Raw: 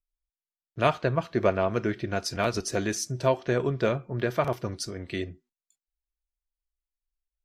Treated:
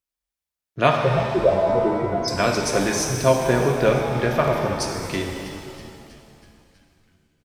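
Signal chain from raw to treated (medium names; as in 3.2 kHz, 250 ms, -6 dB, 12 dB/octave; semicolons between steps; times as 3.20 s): 1.02–2.28 s: spectral contrast enhancement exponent 3.9; high-pass 85 Hz 12 dB/octave; frequency-shifting echo 323 ms, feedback 60%, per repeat -77 Hz, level -15.5 dB; pitch-shifted reverb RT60 2.1 s, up +7 st, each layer -8 dB, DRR 2 dB; trim +5 dB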